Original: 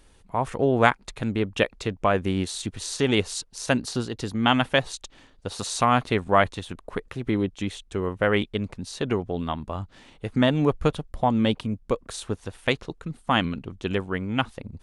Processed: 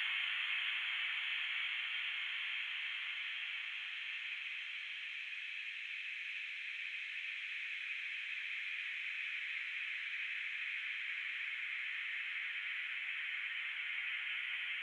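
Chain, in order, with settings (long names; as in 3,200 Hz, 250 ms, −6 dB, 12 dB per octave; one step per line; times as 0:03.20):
extreme stretch with random phases 20×, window 1.00 s, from 0:13.47
four-pole ladder high-pass 2,100 Hz, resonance 80%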